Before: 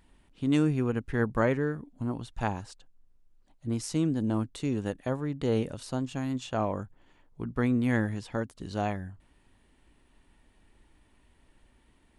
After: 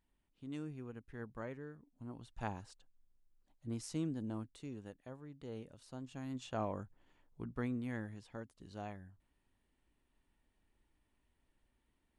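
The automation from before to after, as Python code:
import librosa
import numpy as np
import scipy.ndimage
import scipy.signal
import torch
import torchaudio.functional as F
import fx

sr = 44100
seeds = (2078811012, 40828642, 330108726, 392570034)

y = fx.gain(x, sr, db=fx.line((1.82, -19.5), (2.47, -10.5), (4.0, -10.5), (5.01, -19.5), (5.72, -19.5), (6.48, -9.0), (7.43, -9.0), (7.94, -15.5)))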